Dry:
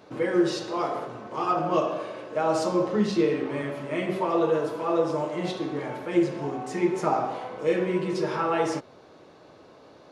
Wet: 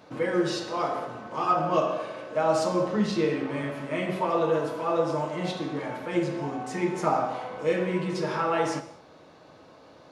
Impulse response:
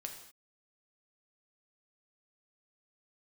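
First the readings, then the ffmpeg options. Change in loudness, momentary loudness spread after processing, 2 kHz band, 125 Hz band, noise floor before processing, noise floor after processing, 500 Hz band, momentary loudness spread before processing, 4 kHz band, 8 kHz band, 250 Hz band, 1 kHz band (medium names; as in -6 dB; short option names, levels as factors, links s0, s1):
-1.0 dB, 8 LU, +1.0 dB, +1.0 dB, -52 dBFS, -52 dBFS, -1.0 dB, 8 LU, +0.5 dB, +0.5 dB, -2.5 dB, +0.5 dB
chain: -filter_complex "[0:a]equalizer=f=390:t=o:w=0.41:g=-6,asplit=2[s0][s1];[1:a]atrim=start_sample=2205[s2];[s1][s2]afir=irnorm=-1:irlink=0,volume=1.19[s3];[s0][s3]amix=inputs=2:normalize=0,volume=0.596"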